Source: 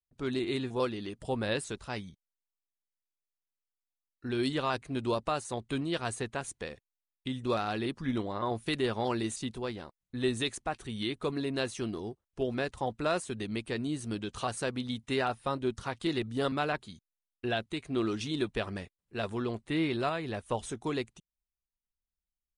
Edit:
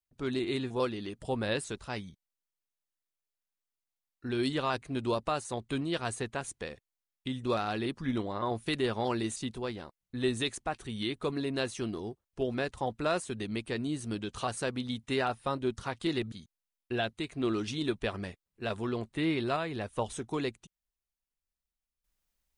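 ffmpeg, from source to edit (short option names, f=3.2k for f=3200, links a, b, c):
-filter_complex "[0:a]asplit=2[a][b];[a]atrim=end=16.322[c];[b]atrim=start=16.848[d];[c][d]acrossfade=d=0.004:c1=hsin:c2=hsin"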